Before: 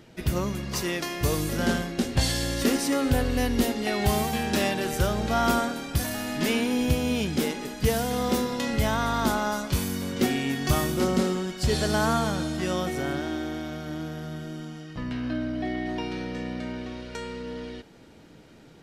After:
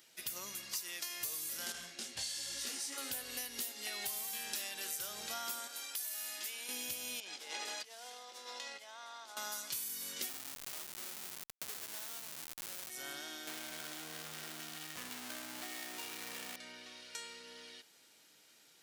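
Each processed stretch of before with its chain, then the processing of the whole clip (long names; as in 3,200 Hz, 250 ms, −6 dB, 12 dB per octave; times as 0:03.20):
0:01.72–0:02.98: low-pass filter 8,700 Hz + low-shelf EQ 93 Hz +9 dB + micro pitch shift up and down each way 37 cents
0:05.67–0:06.69: high-pass filter 380 Hz + downward compressor, threshold −32 dBFS
0:07.20–0:09.37: parametric band 720 Hz +6.5 dB 1.3 octaves + compressor whose output falls as the input rises −33 dBFS + band-pass filter 360–5,500 Hz
0:10.29–0:12.90: high-pass filter 61 Hz + comparator with hysteresis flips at −24.5 dBFS
0:13.47–0:16.56: high-frequency loss of the air 280 metres + power curve on the samples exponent 0.35
whole clip: first difference; downward compressor, threshold −40 dBFS; level +2.5 dB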